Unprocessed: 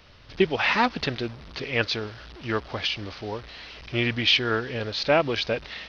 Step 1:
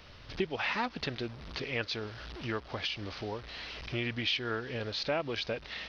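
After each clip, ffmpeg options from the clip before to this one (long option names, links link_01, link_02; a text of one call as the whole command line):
ffmpeg -i in.wav -af "acompressor=threshold=-38dB:ratio=2" out.wav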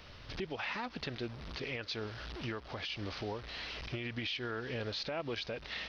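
ffmpeg -i in.wav -af "alimiter=level_in=4.5dB:limit=-24dB:level=0:latency=1:release=96,volume=-4.5dB" out.wav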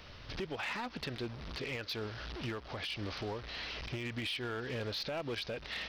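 ffmpeg -i in.wav -af "volume=33.5dB,asoftclip=hard,volume=-33.5dB,volume=1dB" out.wav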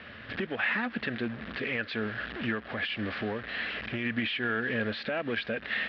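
ffmpeg -i in.wav -af "highpass=120,equalizer=frequency=150:width_type=q:width=4:gain=-7,equalizer=frequency=220:width_type=q:width=4:gain=8,equalizer=frequency=360:width_type=q:width=4:gain=-3,equalizer=frequency=930:width_type=q:width=4:gain=-7,equalizer=frequency=1700:width_type=q:width=4:gain=10,lowpass=frequency=3200:width=0.5412,lowpass=frequency=3200:width=1.3066,volume=6.5dB" out.wav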